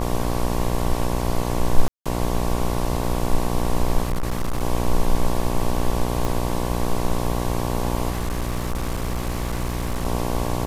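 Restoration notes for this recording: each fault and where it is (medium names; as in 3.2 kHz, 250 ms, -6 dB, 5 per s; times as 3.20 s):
buzz 60 Hz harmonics 19 -25 dBFS
1.88–2.06 s: dropout 176 ms
4.02–4.63 s: clipped -19 dBFS
6.25 s: pop
8.09–10.05 s: clipped -20.5 dBFS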